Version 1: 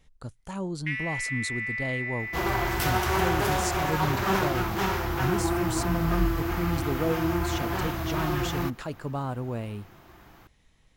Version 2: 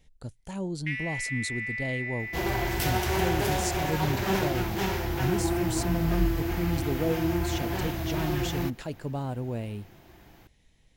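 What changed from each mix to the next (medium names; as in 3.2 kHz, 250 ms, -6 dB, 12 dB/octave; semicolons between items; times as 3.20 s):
master: add peaking EQ 1.2 kHz -10 dB 0.66 oct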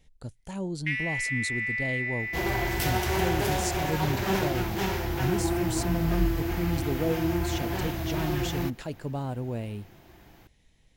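first sound +3.5 dB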